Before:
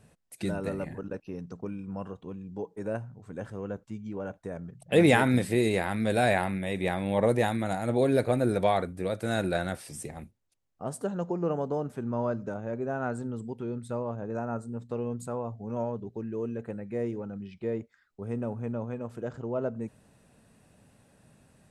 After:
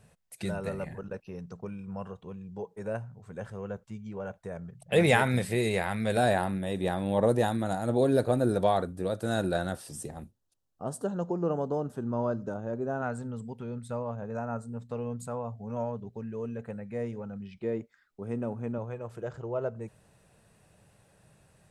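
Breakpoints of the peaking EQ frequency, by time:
peaking EQ -13 dB 0.4 oct
290 Hz
from 6.17 s 2.2 kHz
from 13.02 s 330 Hz
from 17.56 s 79 Hz
from 18.78 s 250 Hz

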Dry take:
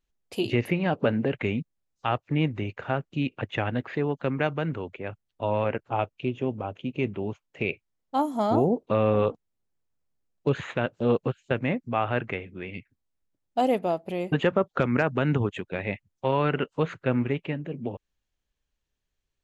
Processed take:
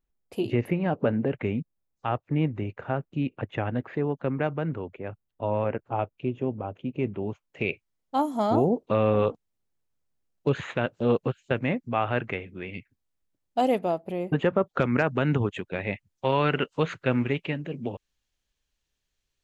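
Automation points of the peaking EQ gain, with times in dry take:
peaking EQ 5 kHz 2.6 oct
7.00 s -10.5 dB
7.65 s +0.5 dB
13.77 s +0.5 dB
14.25 s -10.5 dB
14.82 s +0.5 dB
15.89 s +0.5 dB
16.37 s +6.5 dB

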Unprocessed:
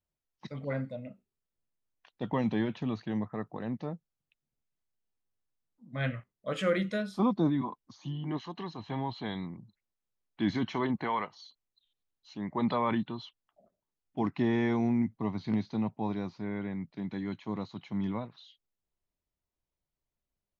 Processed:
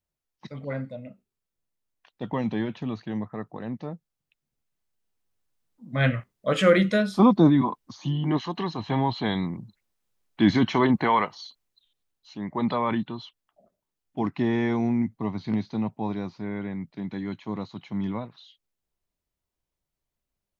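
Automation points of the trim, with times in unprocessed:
3.90 s +2 dB
6.09 s +10 dB
11.42 s +10 dB
12.39 s +3.5 dB

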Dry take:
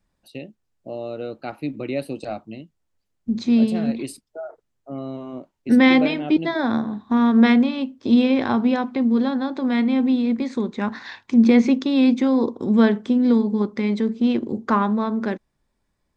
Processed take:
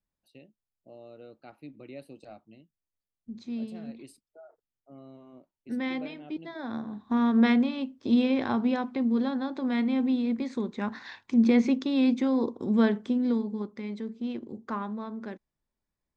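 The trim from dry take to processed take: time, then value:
6.48 s -17.5 dB
7.08 s -7 dB
13.04 s -7 dB
13.79 s -14 dB

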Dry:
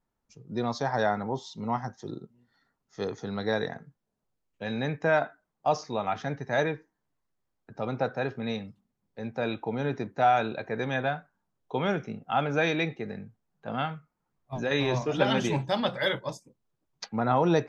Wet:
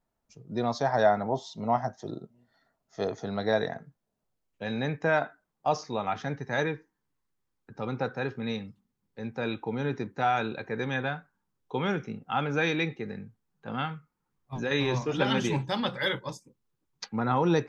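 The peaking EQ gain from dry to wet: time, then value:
peaking EQ 650 Hz 0.29 oct
1.02 s +7 dB
1.42 s +15 dB
3.01 s +15 dB
3.68 s +6.5 dB
5.16 s -3 dB
6.18 s -3 dB
6.68 s -11.5 dB

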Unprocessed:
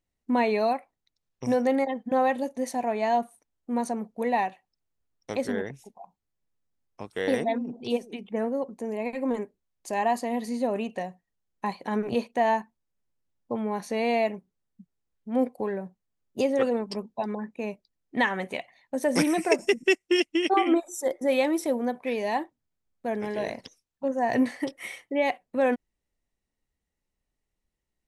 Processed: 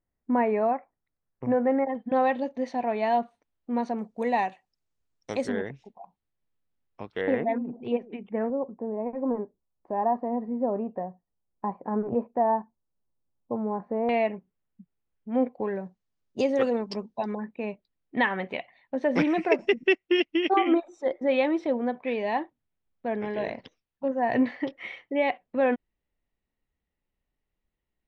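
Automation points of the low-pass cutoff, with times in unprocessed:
low-pass 24 dB/octave
1.9 kHz
from 1.95 s 4.2 kHz
from 3.99 s 8.3 kHz
from 5.49 s 4 kHz
from 7.21 s 2.3 kHz
from 8.50 s 1.2 kHz
from 14.09 s 3.1 kHz
from 15.76 s 6.4 kHz
from 17.33 s 3.6 kHz

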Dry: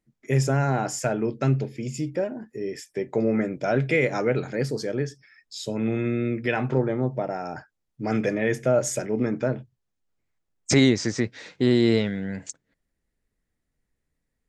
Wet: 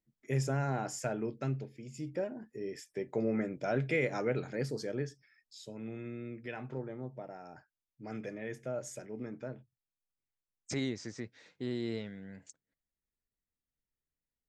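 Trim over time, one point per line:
1.21 s -10 dB
1.89 s -16.5 dB
2.11 s -9 dB
5.01 s -9 dB
5.74 s -17 dB

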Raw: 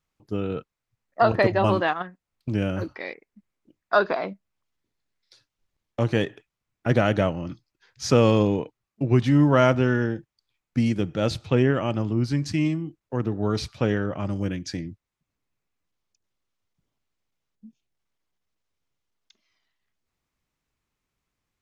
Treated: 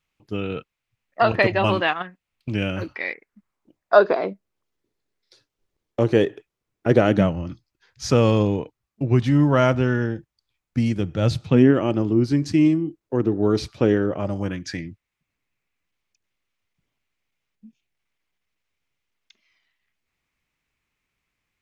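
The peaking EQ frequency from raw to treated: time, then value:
peaking EQ +9.5 dB 1 oct
2.92 s 2.6 kHz
4.16 s 400 Hz
7.05 s 400 Hz
7.46 s 61 Hz
11.01 s 61 Hz
11.78 s 350 Hz
14.07 s 350 Hz
14.82 s 2.3 kHz

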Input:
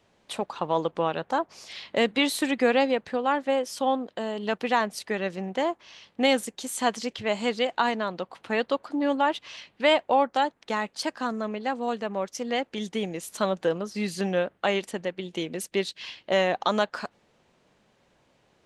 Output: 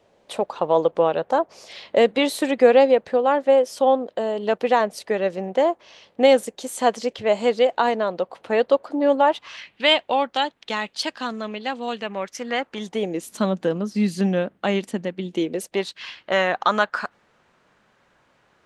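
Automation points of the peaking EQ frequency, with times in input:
peaking EQ +10 dB 1.2 oct
9.20 s 540 Hz
9.83 s 3.3 kHz
11.87 s 3.3 kHz
12.85 s 980 Hz
13.29 s 220 Hz
15.27 s 220 Hz
15.99 s 1.4 kHz

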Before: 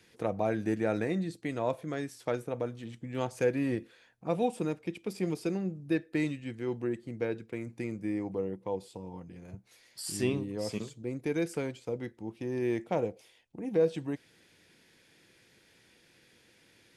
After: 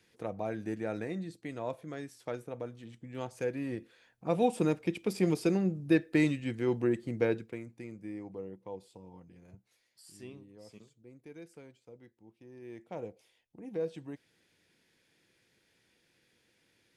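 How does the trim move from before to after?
3.70 s -6 dB
4.63 s +4 dB
7.32 s +4 dB
7.73 s -8.5 dB
9.50 s -8.5 dB
10.08 s -18 dB
12.61 s -18 dB
13.08 s -8.5 dB

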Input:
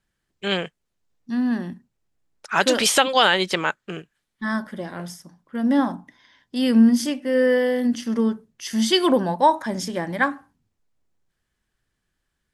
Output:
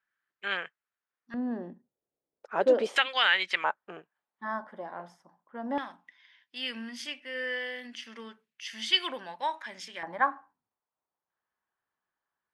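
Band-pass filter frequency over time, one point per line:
band-pass filter, Q 2.1
1.5 kHz
from 1.34 s 500 Hz
from 2.96 s 2.1 kHz
from 3.64 s 860 Hz
from 5.78 s 2.5 kHz
from 10.03 s 960 Hz

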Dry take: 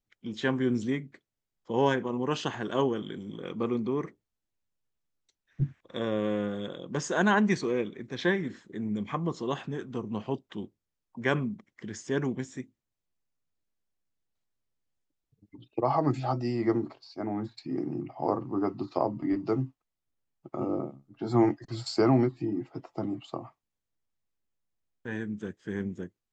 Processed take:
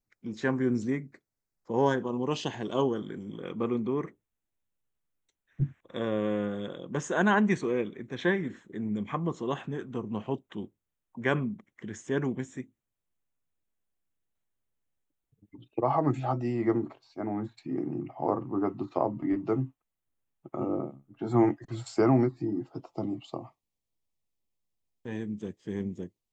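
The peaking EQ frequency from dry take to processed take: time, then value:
peaking EQ -15 dB 0.43 oct
1.72 s 3.2 kHz
2.53 s 1.2 kHz
3.37 s 4.8 kHz
21.85 s 4.8 kHz
23.08 s 1.5 kHz

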